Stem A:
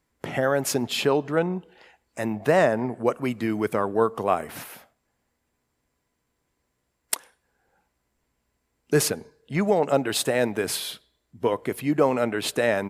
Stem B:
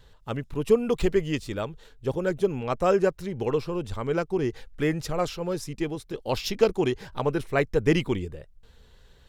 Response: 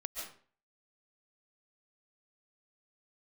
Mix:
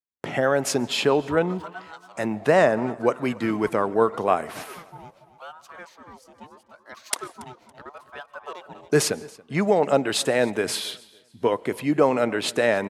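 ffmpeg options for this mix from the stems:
-filter_complex "[0:a]agate=range=-33dB:threshold=-52dB:ratio=3:detection=peak,lowpass=9.2k,volume=1.5dB,asplit=3[a][b][c];[b]volume=-21.5dB[d];[c]volume=-23dB[e];[1:a]aeval=exprs='val(0)*sin(2*PI*820*n/s+820*0.4/0.79*sin(2*PI*0.79*n/s))':c=same,adelay=600,volume=-14dB,asplit=3[f][g][h];[g]volume=-17dB[i];[h]volume=-13dB[j];[2:a]atrim=start_sample=2205[k];[d][i]amix=inputs=2:normalize=0[l];[l][k]afir=irnorm=-1:irlink=0[m];[e][j]amix=inputs=2:normalize=0,aecho=0:1:280|560|840|1120:1|0.29|0.0841|0.0244[n];[a][f][m][n]amix=inputs=4:normalize=0,highpass=f=130:p=1"

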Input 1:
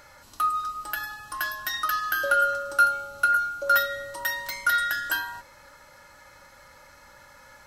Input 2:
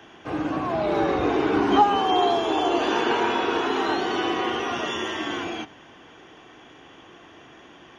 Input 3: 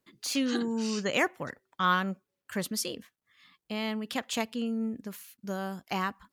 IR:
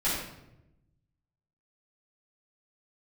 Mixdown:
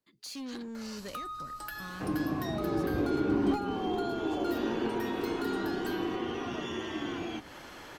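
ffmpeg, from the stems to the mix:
-filter_complex "[0:a]asoftclip=type=tanh:threshold=-25dB,adelay=750,volume=0.5dB[a];[1:a]asoftclip=type=hard:threshold=-13.5dB,adelay=1750,volume=-1dB[b];[2:a]asoftclip=type=hard:threshold=-28dB,volume=-8.5dB[c];[a][b][c]amix=inputs=3:normalize=0,equalizer=f=4.4k:w=5:g=4.5,acrossover=split=330[d][e];[e]acompressor=threshold=-40dB:ratio=4[f];[d][f]amix=inputs=2:normalize=0"

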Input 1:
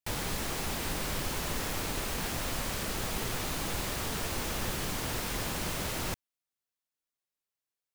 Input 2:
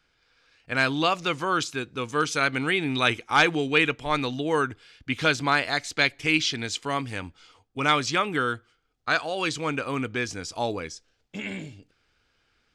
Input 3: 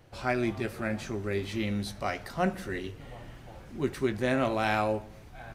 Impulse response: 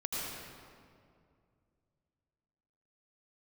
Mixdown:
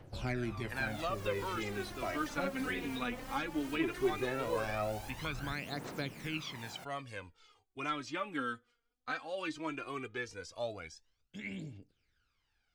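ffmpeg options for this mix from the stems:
-filter_complex "[0:a]highpass=f=140:w=0.5412,highpass=f=140:w=1.3066,adelay=700,volume=-14.5dB[a];[1:a]volume=-13.5dB[b];[2:a]asoftclip=type=hard:threshold=-20dB,volume=-5dB[c];[a][b][c]amix=inputs=3:normalize=0,acrossover=split=350|2600[d][e][f];[d]acompressor=threshold=-39dB:ratio=4[g];[e]acompressor=threshold=-37dB:ratio=4[h];[f]acompressor=threshold=-53dB:ratio=4[i];[g][h][i]amix=inputs=3:normalize=0,aphaser=in_gain=1:out_gain=1:delay=4.3:decay=0.67:speed=0.17:type=triangular"

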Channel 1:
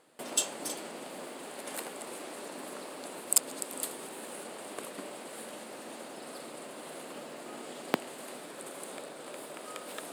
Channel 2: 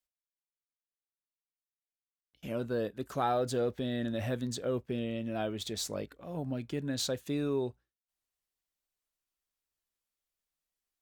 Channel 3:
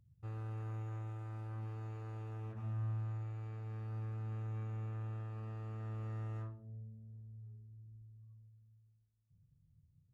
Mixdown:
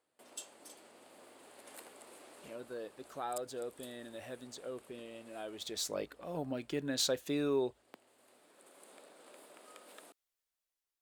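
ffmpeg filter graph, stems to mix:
-filter_complex "[0:a]volume=-17.5dB[a];[1:a]equalizer=f=220:t=o:w=0.37:g=-7,volume=-3dB,afade=t=in:st=5.42:d=0.66:silence=0.281838,asplit=2[b][c];[2:a]highpass=f=210:p=1,alimiter=level_in=24dB:limit=-24dB:level=0:latency=1,volume=-24dB,volume=-18.5dB[d];[c]apad=whole_len=446396[e];[a][e]sidechaincompress=threshold=-47dB:ratio=10:attack=5.7:release=1270[f];[f][b][d]amix=inputs=3:normalize=0,lowshelf=f=170:g=-6.5,dynaudnorm=f=330:g=7:m=5dB,equalizer=f=110:t=o:w=0.59:g=-12"

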